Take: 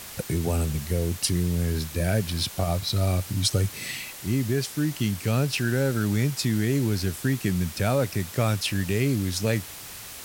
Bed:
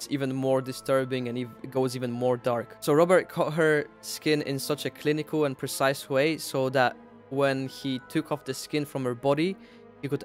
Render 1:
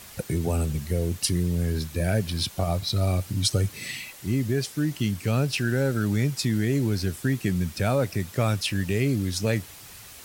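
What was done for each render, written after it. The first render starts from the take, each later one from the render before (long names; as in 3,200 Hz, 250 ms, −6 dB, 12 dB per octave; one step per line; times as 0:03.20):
broadband denoise 6 dB, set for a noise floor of −41 dBFS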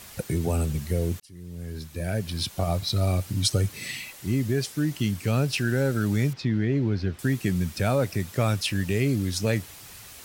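0:01.20–0:02.69: fade in
0:06.33–0:07.19: high-frequency loss of the air 240 metres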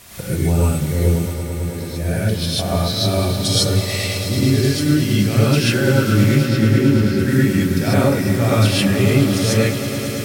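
echo that builds up and dies away 109 ms, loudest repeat 5, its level −14 dB
reverb whose tail is shaped and stops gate 170 ms rising, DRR −7.5 dB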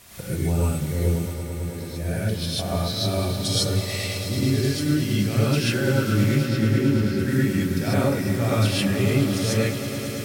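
level −6 dB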